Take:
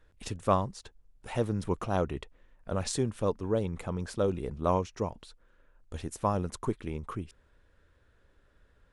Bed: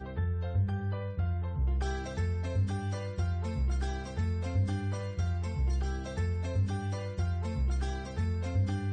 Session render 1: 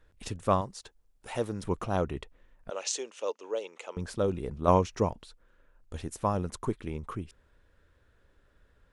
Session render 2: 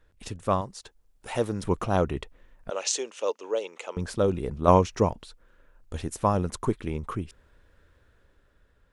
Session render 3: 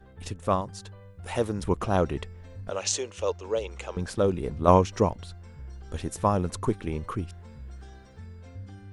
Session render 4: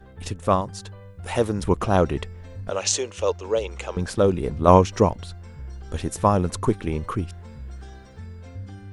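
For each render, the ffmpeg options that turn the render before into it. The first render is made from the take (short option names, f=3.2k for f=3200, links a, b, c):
-filter_complex "[0:a]asettb=1/sr,asplit=3[a][b][c];[a]atrim=end=0.614[d];[b]atrim=start=0.61:end=1.63,asetpts=PTS-STARTPTS,afade=t=in:d=0.004:c=qsin,afade=t=out:st=1.016:d=0.004:c=qsin,bass=f=250:g=-7,treble=f=4k:g=3[e];[c]atrim=start=1.626[f];[d][e]acrossfade=d=0.004:c1=hsin:c2=qsin[g];[g][f]acrossfade=d=0.004:c1=qsin:c2=hsin,asettb=1/sr,asplit=3[h][i][j];[h]atrim=end=2.704[k];[i]atrim=start=2.7:end=3.97,asetpts=PTS-STARTPTS,afade=t=in:d=0.004:c=qsin,afade=t=out:st=1.266:d=0.004:c=qsin,highpass=f=450:w=0.5412,highpass=f=450:w=1.3066,equalizer=f=730:t=q:w=4:g=-5,equalizer=f=1.1k:t=q:w=4:g=-4,equalizer=f=1.6k:t=q:w=4:g=-5,equalizer=f=2.8k:t=q:w=4:g=8,equalizer=f=6.4k:t=q:w=4:g=9,lowpass=f=7.9k:w=0.5412,lowpass=f=7.9k:w=1.3066[l];[j]atrim=start=3.966[m];[k][l]acrossfade=d=0.004:c1=hsin:c2=qsin[n];[n][m]acrossfade=d=0.004:c1=qsin:c2=hsin,asplit=3[o][p][q];[o]atrim=end=4.682[r];[p]atrim=start=4.678:end=5.132,asetpts=PTS-STARTPTS,volume=5dB[s];[q]atrim=start=5.128[t];[r][s]acrossfade=d=0.004:c1=hsin:c2=hsin[u];[u][t]acrossfade=d=0.004:c1=hsin:c2=hsin"
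-af "dynaudnorm=f=170:g=11:m=5dB"
-filter_complex "[1:a]volume=-12.5dB[a];[0:a][a]amix=inputs=2:normalize=0"
-af "volume=5dB,alimiter=limit=-1dB:level=0:latency=1"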